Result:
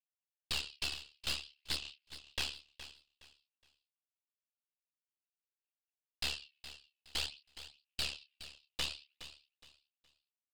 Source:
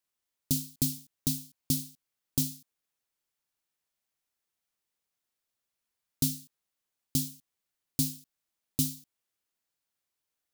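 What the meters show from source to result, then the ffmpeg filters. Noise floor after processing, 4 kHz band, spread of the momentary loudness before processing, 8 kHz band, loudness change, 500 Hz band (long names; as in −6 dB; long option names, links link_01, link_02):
below −85 dBFS, +3.5 dB, 10 LU, −12.5 dB, −8.0 dB, −2.0 dB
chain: -filter_complex "[0:a]aphaser=in_gain=1:out_gain=1:delay=2.7:decay=0.66:speed=0.53:type=sinusoidal,highpass=frequency=2700:width_type=q:width=9.6,alimiter=limit=-14dB:level=0:latency=1:release=354,asplit=2[link_01][link_02];[link_02]adelay=28,volume=-8dB[link_03];[link_01][link_03]amix=inputs=2:normalize=0,aeval=exprs='val(0)*sin(2*PI*36*n/s)':channel_layout=same,acontrast=57,agate=range=-33dB:threshold=-54dB:ratio=3:detection=peak,aresample=11025,aeval=exprs='0.0631*(abs(mod(val(0)/0.0631+3,4)-2)-1)':channel_layout=same,aresample=44100,aeval=exprs='(tanh(39.8*val(0)+0.8)-tanh(0.8))/39.8':channel_layout=same,aecho=1:1:417|834|1251:0.211|0.0592|0.0166,volume=2dB"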